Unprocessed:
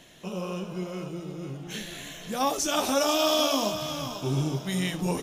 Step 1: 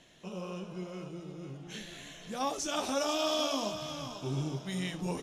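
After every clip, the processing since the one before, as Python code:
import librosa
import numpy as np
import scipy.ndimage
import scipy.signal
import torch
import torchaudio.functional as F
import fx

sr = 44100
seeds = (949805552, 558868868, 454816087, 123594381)

y = scipy.signal.sosfilt(scipy.signal.butter(2, 8800.0, 'lowpass', fs=sr, output='sos'), x)
y = y * librosa.db_to_amplitude(-7.0)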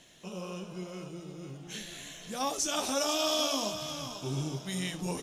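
y = fx.high_shelf(x, sr, hz=5100.0, db=10.0)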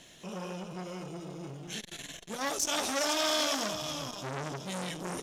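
y = fx.transformer_sat(x, sr, knee_hz=3500.0)
y = y * librosa.db_to_amplitude(4.0)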